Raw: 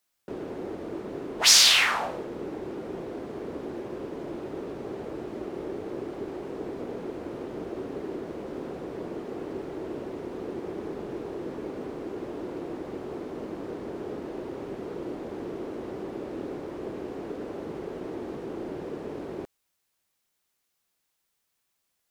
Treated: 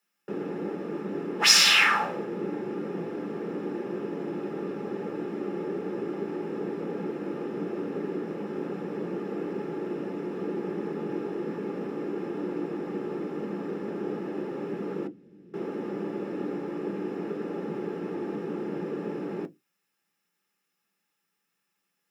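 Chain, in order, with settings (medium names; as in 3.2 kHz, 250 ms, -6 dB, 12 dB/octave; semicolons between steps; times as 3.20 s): 15.07–15.54 s: amplifier tone stack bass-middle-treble 10-0-1; reverberation RT60 0.15 s, pre-delay 3 ms, DRR 6.5 dB; trim -4.5 dB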